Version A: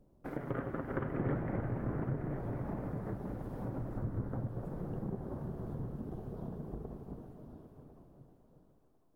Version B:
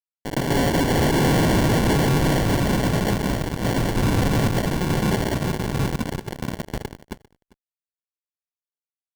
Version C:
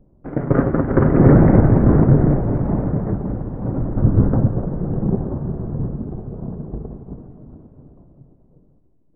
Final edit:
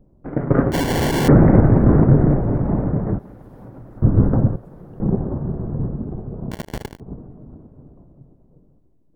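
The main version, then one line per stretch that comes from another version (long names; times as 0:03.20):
C
0:00.72–0:01.28: punch in from B
0:03.19–0:04.02: punch in from A
0:04.56–0:05.00: punch in from A
0:06.51–0:07.00: punch in from B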